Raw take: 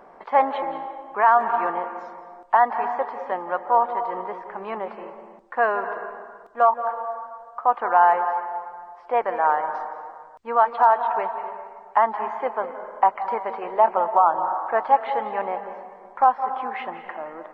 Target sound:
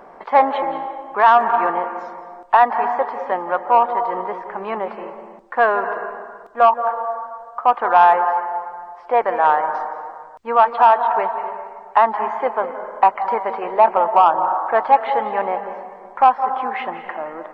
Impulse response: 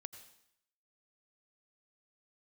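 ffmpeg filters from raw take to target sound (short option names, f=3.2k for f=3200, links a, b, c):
-af "acontrast=40"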